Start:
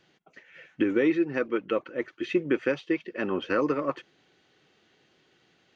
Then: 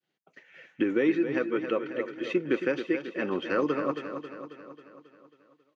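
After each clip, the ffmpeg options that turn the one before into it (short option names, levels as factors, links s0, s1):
-filter_complex "[0:a]agate=range=0.0224:threshold=0.002:ratio=3:detection=peak,highpass=110,asplit=2[s0][s1];[s1]aecho=0:1:271|542|813|1084|1355|1626|1897:0.355|0.202|0.115|0.0657|0.0375|0.0213|0.0122[s2];[s0][s2]amix=inputs=2:normalize=0,volume=0.841"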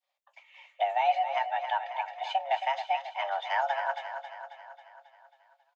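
-filter_complex "[0:a]afreqshift=400,asplit=2[s0][s1];[s1]adelay=18,volume=0.211[s2];[s0][s2]amix=inputs=2:normalize=0,volume=0.794"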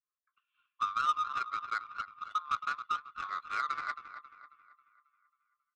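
-filter_complex "[0:a]acrossover=split=940|1700|2300[s0][s1][s2][s3];[s2]acompressor=threshold=0.002:ratio=6[s4];[s0][s1][s4][s3]amix=inputs=4:normalize=0,afreqshift=500,adynamicsmooth=sensitivity=1.5:basefreq=770,volume=0.668"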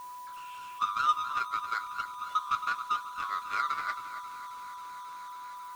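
-af "aeval=exprs='val(0)+0.5*0.00447*sgn(val(0))':c=same,flanger=delay=8.9:depth=1.6:regen=-51:speed=0.93:shape=triangular,aeval=exprs='val(0)+0.00447*sin(2*PI*990*n/s)':c=same,volume=2"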